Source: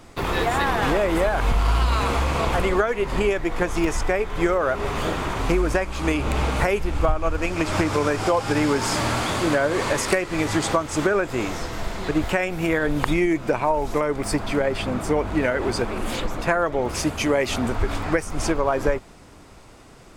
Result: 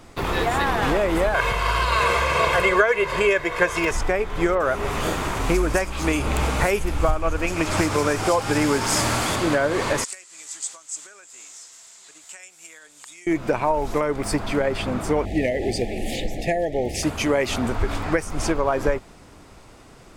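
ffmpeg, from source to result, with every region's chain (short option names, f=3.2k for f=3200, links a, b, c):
-filter_complex "[0:a]asettb=1/sr,asplit=3[a][b][c];[a]atrim=end=1.344[d];[b]atrim=start=1.34:end=3.91,asetpts=PTS-STARTPTS,afade=t=in:d=0.004:c=qsin,afade=t=out:st=2.566:d=0.004:c=qsin,highpass=f=210:p=1,equalizer=f=2k:t=o:w=1.5:g=6,aecho=1:1:1.9:0.79,atrim=end_sample=113337[e];[c]atrim=start=3.906[f];[d][e]acrossfade=d=0.004:c1=hsin:c2=qsin[g];[g][f]acrossfade=d=0.004:c1=qsin:c2=hsin,asettb=1/sr,asplit=3[h][i][j];[h]atrim=end=4.554[k];[i]atrim=start=4.55:end=9.36,asetpts=PTS-STARTPTS,afade=t=in:d=0.004:c=qsin,afade=t=out:st=4.806:d=0.004:c=qsin,highshelf=f=3.4k:g=7.5,acrossover=split=3900[l][m];[m]adelay=50[n];[l][n]amix=inputs=2:normalize=0,atrim=end_sample=212121[o];[j]atrim=start=9.356[p];[k][o]acrossfade=d=0.004:c1=hsin:c2=qsin[q];[q][p]acrossfade=d=0.004:c1=qsin:c2=hsin,asettb=1/sr,asplit=3[r][s][t];[r]atrim=end=10.044[u];[s]atrim=start=10.04:end=13.27,asetpts=PTS-STARTPTS,afade=t=in:d=0.004:c=qsin,afade=t=out:st=3.226:d=0.004:c=qsin,bandpass=f=7.5k:t=q:w=4.4,acontrast=28[v];[t]atrim=start=13.266[w];[u][v]acrossfade=d=0.004:c1=hsin:c2=qsin[x];[x][w]acrossfade=d=0.004:c1=qsin:c2=hsin,asettb=1/sr,asplit=3[y][z][aa];[y]atrim=end=15.254[ab];[z]atrim=start=15.25:end=17.03,asetpts=PTS-STARTPTS,afade=t=in:d=0.004:c=qsin,afade=t=out:st=1.776:d=0.004:c=qsin,aeval=exprs='clip(val(0),-1,0.2)':c=same,asuperstop=centerf=1200:order=20:qfactor=1.3[ac];[aa]atrim=start=17.026[ad];[ab][ac]acrossfade=d=0.004:c1=hsin:c2=qsin[ae];[ae][ad]acrossfade=d=0.004:c1=qsin:c2=hsin"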